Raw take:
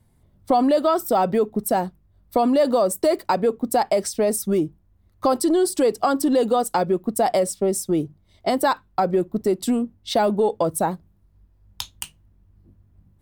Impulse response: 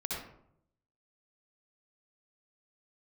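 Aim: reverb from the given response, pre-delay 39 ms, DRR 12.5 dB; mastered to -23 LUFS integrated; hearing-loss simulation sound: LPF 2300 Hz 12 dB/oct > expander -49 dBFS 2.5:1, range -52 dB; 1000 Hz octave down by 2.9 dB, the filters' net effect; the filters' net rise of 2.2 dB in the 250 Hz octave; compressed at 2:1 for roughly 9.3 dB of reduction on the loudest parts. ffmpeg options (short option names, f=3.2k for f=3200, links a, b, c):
-filter_complex "[0:a]equalizer=f=250:t=o:g=3,equalizer=f=1k:t=o:g=-4.5,acompressor=threshold=-32dB:ratio=2,asplit=2[a][b];[1:a]atrim=start_sample=2205,adelay=39[c];[b][c]afir=irnorm=-1:irlink=0,volume=-15.5dB[d];[a][d]amix=inputs=2:normalize=0,lowpass=2.3k,agate=range=-52dB:threshold=-49dB:ratio=2.5,volume=7dB"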